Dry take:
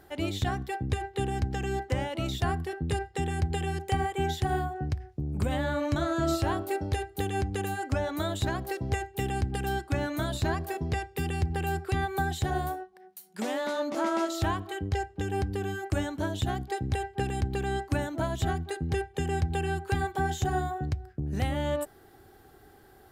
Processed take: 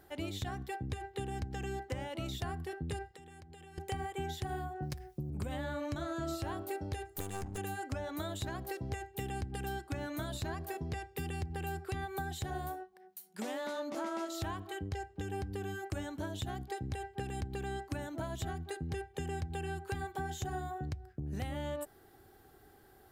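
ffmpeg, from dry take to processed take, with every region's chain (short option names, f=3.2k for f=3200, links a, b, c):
-filter_complex "[0:a]asettb=1/sr,asplit=3[a][b][c];[a]atrim=end=3.114[d];[b]atrim=start=3.11:end=3.78,asetpts=PTS-STARTPTS,afade=t=in:d=0.004:c=qsin,afade=t=out:st=0.666:d=0.004:c=qsin,lowshelf=f=180:g=-7.5,acompressor=threshold=-44dB:ratio=16:attack=3.2:release=140:knee=1:detection=peak[e];[c]atrim=start=3.776[f];[d][e]acrossfade=d=0.004:c1=hsin:c2=qsin[g];[g][f]acrossfade=d=0.004:c1=qsin:c2=hsin,asettb=1/sr,asplit=3[h][i][j];[h]atrim=end=4.824[k];[i]atrim=start=4.82:end=5.3,asetpts=PTS-STARTPTS,afade=t=in:d=0.004:c=qsin,afade=t=out:st=0.476:d=0.004:c=qsin,aemphasis=mode=production:type=50fm,aecho=1:1:5.6:0.98,atrim=end_sample=21168[l];[j]atrim=start=5.296[m];[k][l]acrossfade=d=0.004:c1=hsin:c2=qsin[n];[n][m]acrossfade=d=0.004:c1=qsin:c2=hsin,asettb=1/sr,asplit=3[o][p][q];[o]atrim=end=7.054[r];[p]atrim=start=7.05:end=7.58,asetpts=PTS-STARTPTS,afade=t=in:d=0.004:c=qsin,afade=t=out:st=0.526:d=0.004:c=qsin,highshelf=f=5.2k:t=q:w=1.5:g=7,aeval=exprs='clip(val(0),-1,0.00944)':c=same[s];[q]atrim=start=7.576[t];[r][s]acrossfade=d=0.004:c1=hsin:c2=qsin[u];[u][t]acrossfade=d=0.004:c1=qsin:c2=hsin,acompressor=threshold=-30dB:ratio=3,highshelf=f=10k:g=4.5,volume=-5.5dB"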